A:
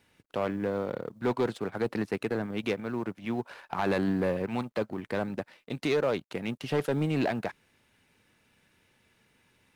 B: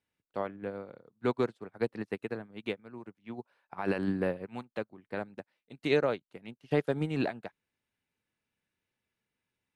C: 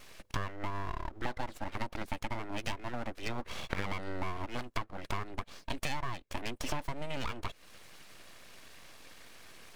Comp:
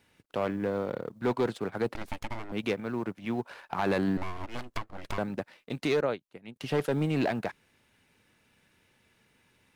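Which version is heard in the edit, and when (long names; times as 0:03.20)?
A
0:01.95–0:02.52: punch in from C
0:04.17–0:05.18: punch in from C
0:06.01–0:06.56: punch in from B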